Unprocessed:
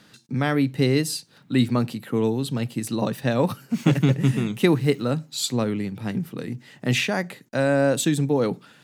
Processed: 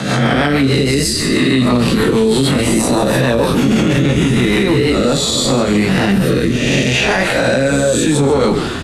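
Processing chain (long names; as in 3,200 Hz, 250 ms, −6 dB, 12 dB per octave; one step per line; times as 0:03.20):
peak hold with a rise ahead of every peak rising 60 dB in 0.99 s
low-pass filter 11,000 Hz 24 dB per octave
low-shelf EQ 130 Hz −11.5 dB
downward compressor 4 to 1, threshold −26 dBFS, peak gain reduction 11.5 dB
rotating-speaker cabinet horn 6.3 Hz, later 0.75 Hz, at 0:04.61
chorus effect 0.65 Hz, delay 15 ms, depth 7.8 ms
echo with shifted repeats 145 ms, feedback 46%, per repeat −65 Hz, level −12 dB
convolution reverb, pre-delay 3 ms, DRR 11.5 dB
boost into a limiter +28.5 dB
multiband upward and downward compressor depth 40%
level −4 dB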